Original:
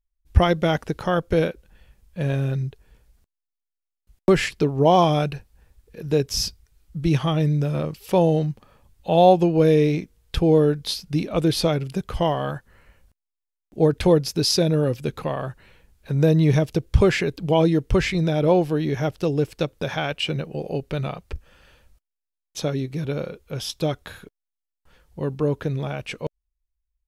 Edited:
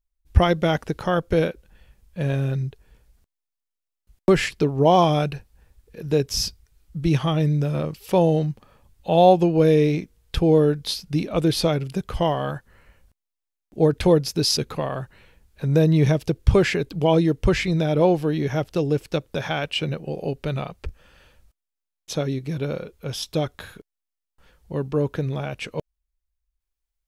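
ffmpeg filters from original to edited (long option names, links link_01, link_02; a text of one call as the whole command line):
ffmpeg -i in.wav -filter_complex "[0:a]asplit=2[link_01][link_02];[link_01]atrim=end=14.572[link_03];[link_02]atrim=start=15.038[link_04];[link_03][link_04]acrossfade=duration=0.004:curve1=hsin:curve2=hsin" out.wav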